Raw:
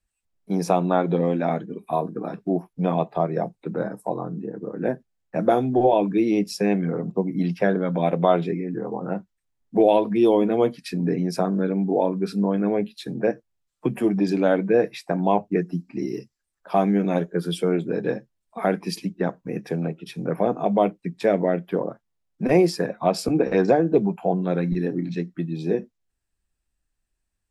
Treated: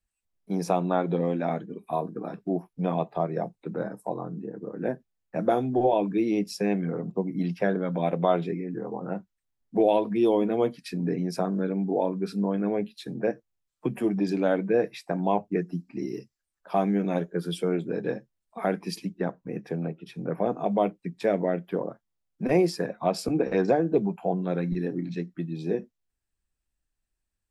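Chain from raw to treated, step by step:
0:19.24–0:20.46: high-shelf EQ 3,800 Hz −8 dB
level −4.5 dB

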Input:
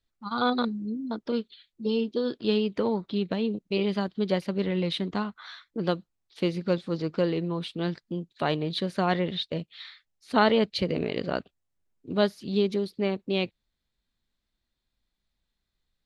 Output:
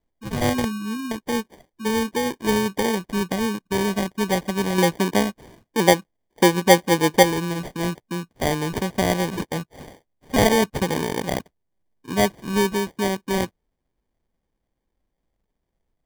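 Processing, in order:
0:04.78–0:07.23: drawn EQ curve 110 Hz 0 dB, 550 Hz +10 dB, 880 Hz +7 dB, 2,300 Hz −19 dB, 5,000 Hz −23 dB, 9,900 Hz +2 dB
decimation without filtering 33×
level +4 dB

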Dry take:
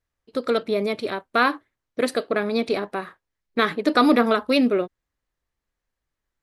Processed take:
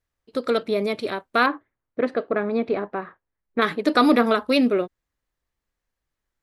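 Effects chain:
0:01.46–0:03.62: low-pass filter 1,800 Hz 12 dB per octave

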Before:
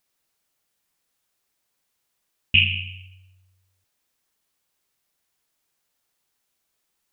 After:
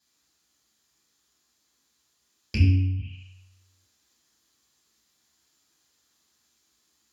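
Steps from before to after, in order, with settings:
treble cut that deepens with the level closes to 580 Hz, closed at −26 dBFS
0:02.57–0:02.99: low shelf with overshoot 110 Hz +10.5 dB, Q 1.5
speech leveller
soft clipping −19 dBFS, distortion −16 dB
convolution reverb RT60 0.70 s, pre-delay 7 ms, DRR −6 dB

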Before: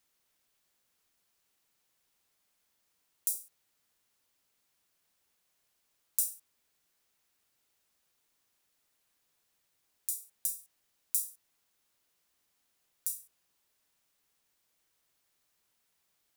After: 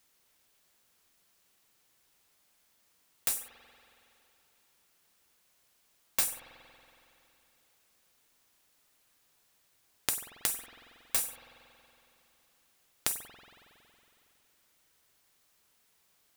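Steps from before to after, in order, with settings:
phase distortion by the signal itself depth 0.16 ms
spring reverb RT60 3 s, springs 46 ms, chirp 45 ms, DRR 8 dB
level +6.5 dB

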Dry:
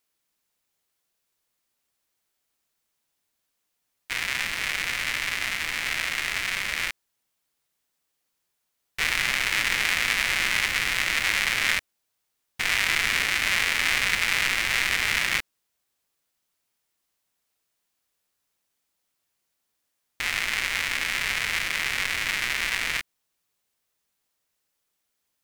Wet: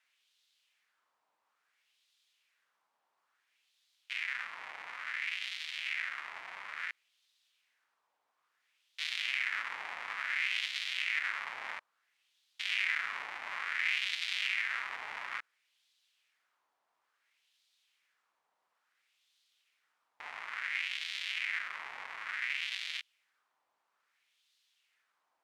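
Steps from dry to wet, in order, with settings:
in parallel at −9.5 dB: bit-depth reduction 8 bits, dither triangular
on the sum: auto-filter band-pass sine 0.58 Hz 870–3,700 Hz
level −8 dB

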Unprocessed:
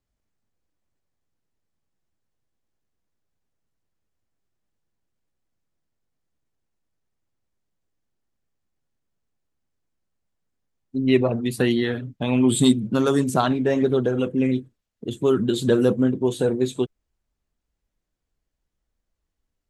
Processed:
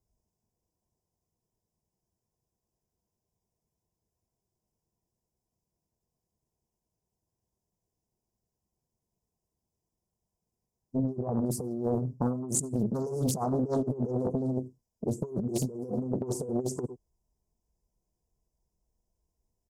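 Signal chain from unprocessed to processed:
in parallel at −2 dB: brickwall limiter −15 dBFS, peak gain reduction 9 dB
on the sum: linear-phase brick-wall band-stop 1,100–4,800 Hz
notch comb filter 280 Hz
on a send: single-tap delay 101 ms −21.5 dB
on the sum: compressor whose output falls as the input rises −22 dBFS, ratio −0.5
highs frequency-modulated by the lows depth 0.7 ms
level −7 dB

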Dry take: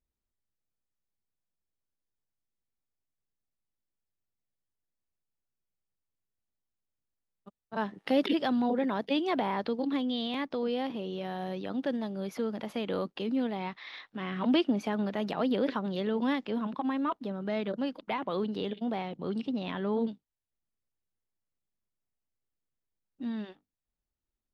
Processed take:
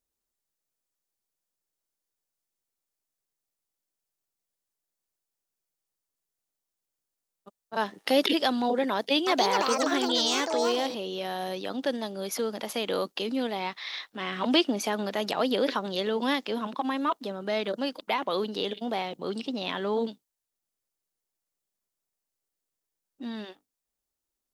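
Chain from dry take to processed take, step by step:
bass and treble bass −12 dB, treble +14 dB
0:08.93–0:11.17: delay with pitch and tempo change per echo 337 ms, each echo +5 semitones, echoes 2
one half of a high-frequency compander decoder only
level +5 dB

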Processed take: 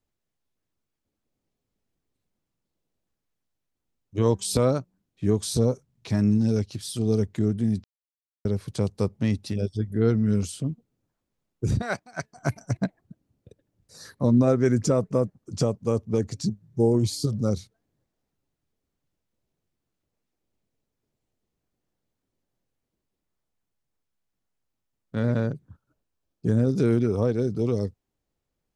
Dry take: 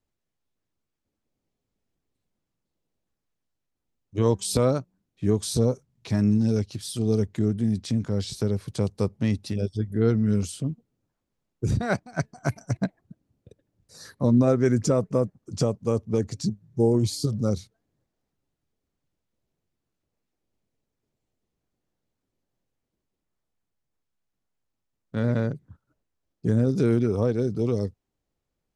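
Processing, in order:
0:07.84–0:08.45: silence
0:11.82–0:12.36: low-shelf EQ 420 Hz −11.5 dB
0:25.31–0:26.57: notch filter 2,000 Hz, Q 11

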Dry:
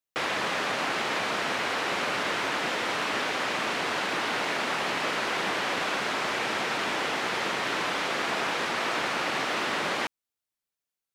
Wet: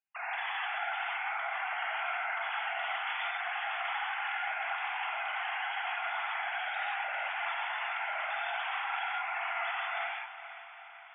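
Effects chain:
three sine waves on the formant tracks
high-pass filter 870 Hz 6 dB per octave
brickwall limiter −31 dBFS, peak gain reduction 11.5 dB
on a send: feedback delay with all-pass diffusion 454 ms, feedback 60%, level −12.5 dB
on the sum: reverb whose tail is shaped and stops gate 210 ms flat, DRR −5 dB
level −3.5 dB

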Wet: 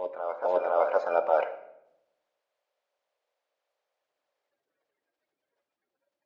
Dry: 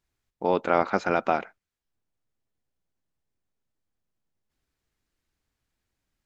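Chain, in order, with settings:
spectral magnitudes quantised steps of 30 dB
low-pass filter 4,200 Hz 12 dB per octave
parametric band 730 Hz +2.5 dB 2 octaves
reversed playback
downward compressor 5 to 1, threshold −30 dBFS, peak gain reduction 14.5 dB
reversed playback
high-pass with resonance 560 Hz, resonance Q 4.9
phase shifter 1.7 Hz, delay 2.6 ms, feedback 29%
backwards echo 511 ms −7.5 dB
rectangular room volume 240 cubic metres, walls mixed, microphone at 0.39 metres

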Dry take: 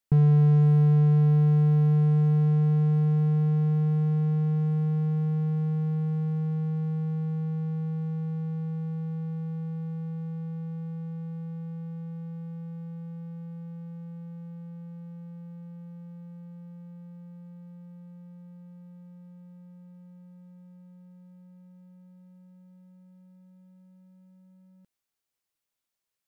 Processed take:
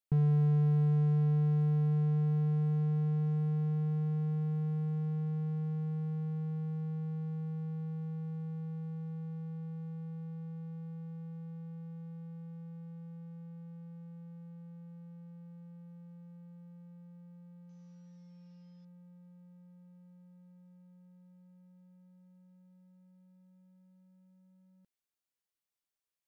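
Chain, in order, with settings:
0:17.69–0:18.85: linear delta modulator 32 kbit/s, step −59.5 dBFS
level −8 dB

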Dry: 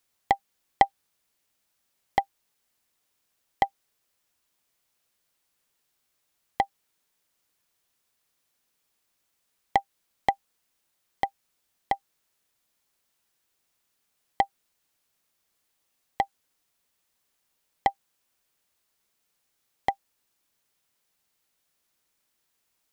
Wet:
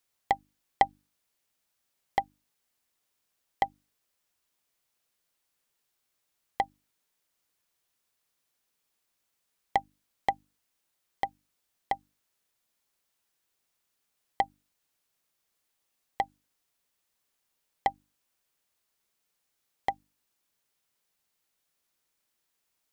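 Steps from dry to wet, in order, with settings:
mains-hum notches 50/100/150/200/250/300 Hz
level −3.5 dB

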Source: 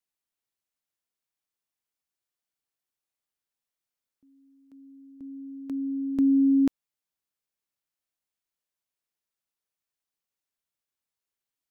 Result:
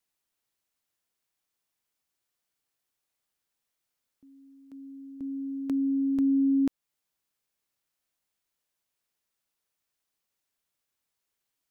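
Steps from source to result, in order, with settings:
in parallel at −0.5 dB: downward compressor, threshold −34 dBFS, peak gain reduction 13.5 dB
on the sum: brickwall limiter −20 dBFS, peak gain reduction 5.5 dB

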